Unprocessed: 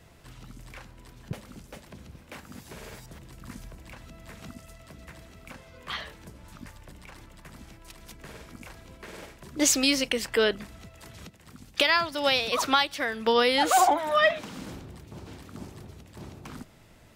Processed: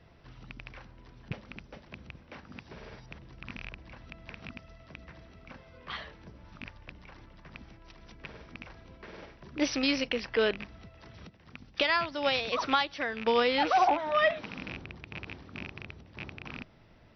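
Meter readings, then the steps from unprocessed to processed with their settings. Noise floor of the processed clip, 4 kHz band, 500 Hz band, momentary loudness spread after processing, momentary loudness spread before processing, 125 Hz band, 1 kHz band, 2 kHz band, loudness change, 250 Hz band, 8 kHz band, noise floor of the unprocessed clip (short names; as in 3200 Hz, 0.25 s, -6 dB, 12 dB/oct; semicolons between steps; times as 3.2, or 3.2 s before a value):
-58 dBFS, -6.0 dB, -3.0 dB, 23 LU, 22 LU, -2.5 dB, -3.5 dB, -3.5 dB, -6.0 dB, -3.0 dB, -17.5 dB, -54 dBFS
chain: rattling part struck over -40 dBFS, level -21 dBFS; brick-wall FIR low-pass 6000 Hz; high shelf 4200 Hz -8 dB; gain -3 dB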